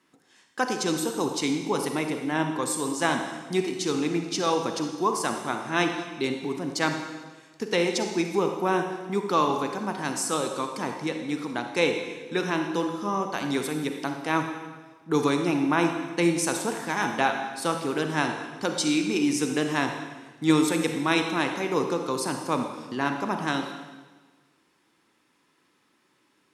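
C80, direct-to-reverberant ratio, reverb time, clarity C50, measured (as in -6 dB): 7.0 dB, 4.5 dB, 1.3 s, 5.5 dB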